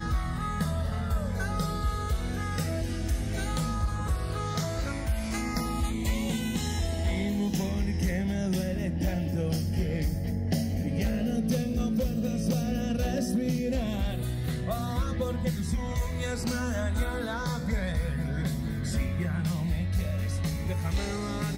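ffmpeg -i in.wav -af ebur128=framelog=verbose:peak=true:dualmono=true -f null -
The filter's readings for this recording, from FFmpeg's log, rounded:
Integrated loudness:
  I:         -27.1 LUFS
  Threshold: -37.1 LUFS
Loudness range:
  LRA:         2.1 LU
  Threshold: -47.0 LUFS
  LRA low:   -28.0 LUFS
  LRA high:  -25.9 LUFS
True peak:
  Peak:      -15.0 dBFS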